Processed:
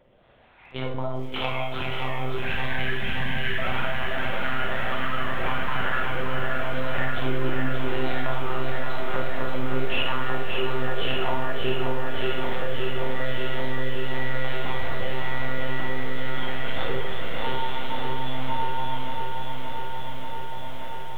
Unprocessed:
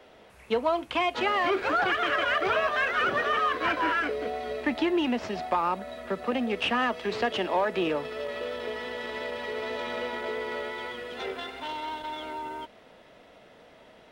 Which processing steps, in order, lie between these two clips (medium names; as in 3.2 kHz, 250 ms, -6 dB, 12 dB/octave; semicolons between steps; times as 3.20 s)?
harmonic tremolo 1.4 Hz, depth 70%, crossover 510 Hz; hum notches 60/120/180/240/300/360/420/480 Hz; level rider gain up to 11 dB; plain phase-vocoder stretch 1.5×; monotone LPC vocoder at 8 kHz 130 Hz; spectral selection erased 2.45–3.58 s, 270–1500 Hz; on a send: echo that smears into a reverb 503 ms, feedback 44%, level -16 dB; on the sum: compression 6:1, threshold -27 dBFS, peak gain reduction 14 dB; Schroeder reverb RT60 0.49 s, combs from 31 ms, DRR 2.5 dB; bit-crushed delay 578 ms, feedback 80%, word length 9-bit, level -5 dB